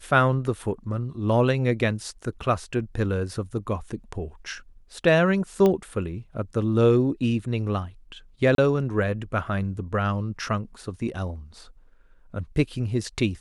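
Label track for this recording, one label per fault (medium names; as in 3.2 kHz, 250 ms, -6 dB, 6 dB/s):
5.660000	5.660000	pop -11 dBFS
8.550000	8.580000	dropout 32 ms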